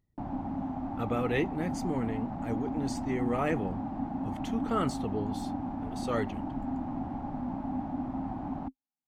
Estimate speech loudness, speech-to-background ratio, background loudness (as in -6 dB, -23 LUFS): -34.0 LUFS, 2.0 dB, -36.0 LUFS